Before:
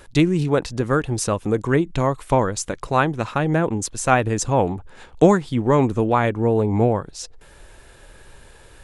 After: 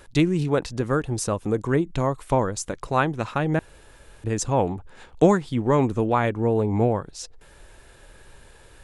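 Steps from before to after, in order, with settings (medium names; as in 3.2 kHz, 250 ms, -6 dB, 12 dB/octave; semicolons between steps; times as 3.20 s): 0.81–2.97 s: dynamic bell 2.6 kHz, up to -4 dB, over -35 dBFS, Q 0.83; 3.59–4.24 s: room tone; trim -3 dB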